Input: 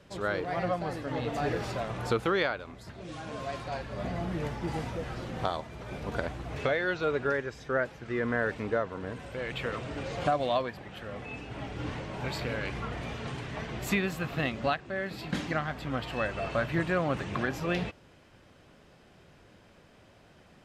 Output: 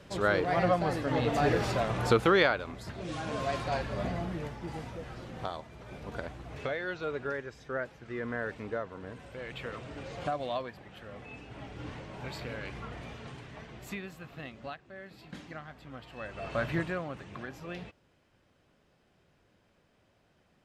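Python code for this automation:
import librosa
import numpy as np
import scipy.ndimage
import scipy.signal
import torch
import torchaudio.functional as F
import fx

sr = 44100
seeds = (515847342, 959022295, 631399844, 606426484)

y = fx.gain(x, sr, db=fx.line((3.86, 4.0), (4.54, -6.0), (12.98, -6.0), (14.2, -13.0), (16.12, -13.0), (16.69, 0.0), (17.13, -11.0)))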